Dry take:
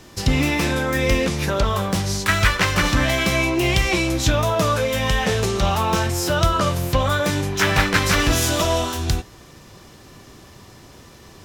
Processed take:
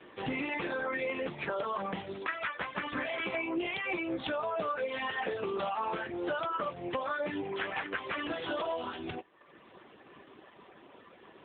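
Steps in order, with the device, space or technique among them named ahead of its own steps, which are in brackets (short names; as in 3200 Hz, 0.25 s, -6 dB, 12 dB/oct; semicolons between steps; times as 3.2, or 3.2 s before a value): reverb removal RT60 0.84 s; voicemail (BPF 300–3300 Hz; compressor 10:1, threshold -27 dBFS, peak gain reduction 12.5 dB; gain -2.5 dB; AMR-NB 7.95 kbps 8000 Hz)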